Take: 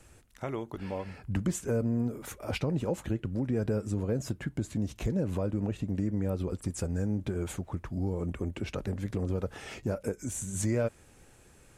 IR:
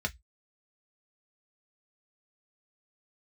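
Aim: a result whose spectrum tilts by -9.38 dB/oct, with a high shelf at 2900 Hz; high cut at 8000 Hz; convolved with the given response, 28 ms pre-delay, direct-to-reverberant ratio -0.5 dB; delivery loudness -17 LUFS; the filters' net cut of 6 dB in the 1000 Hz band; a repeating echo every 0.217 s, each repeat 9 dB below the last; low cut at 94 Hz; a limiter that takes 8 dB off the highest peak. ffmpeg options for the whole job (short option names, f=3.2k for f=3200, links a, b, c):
-filter_complex "[0:a]highpass=94,lowpass=8k,equalizer=f=1k:t=o:g=-7.5,highshelf=f=2.9k:g=-7,alimiter=level_in=2.5dB:limit=-24dB:level=0:latency=1,volume=-2.5dB,aecho=1:1:217|434|651|868:0.355|0.124|0.0435|0.0152,asplit=2[a][b];[1:a]atrim=start_sample=2205,adelay=28[c];[b][c]afir=irnorm=-1:irlink=0,volume=-4.5dB[d];[a][d]amix=inputs=2:normalize=0,volume=14.5dB"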